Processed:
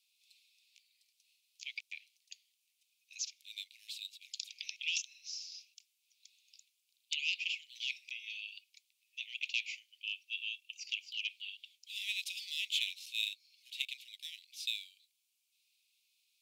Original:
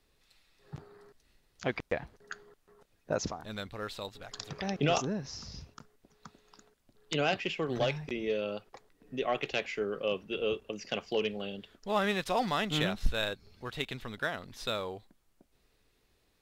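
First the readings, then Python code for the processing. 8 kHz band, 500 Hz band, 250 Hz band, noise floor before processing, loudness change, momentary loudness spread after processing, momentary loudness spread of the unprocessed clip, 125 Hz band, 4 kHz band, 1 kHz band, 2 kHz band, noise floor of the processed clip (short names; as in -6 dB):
+1.0 dB, under -40 dB, under -40 dB, -72 dBFS, -5.0 dB, 15 LU, 14 LU, under -40 dB, +1.0 dB, under -40 dB, -3.5 dB, -81 dBFS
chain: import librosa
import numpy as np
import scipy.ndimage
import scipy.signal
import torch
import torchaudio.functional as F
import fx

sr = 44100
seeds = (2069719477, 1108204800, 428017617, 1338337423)

y = scipy.signal.sosfilt(scipy.signal.butter(16, 2300.0, 'highpass', fs=sr, output='sos'), x)
y = F.gain(torch.from_numpy(y), 1.0).numpy()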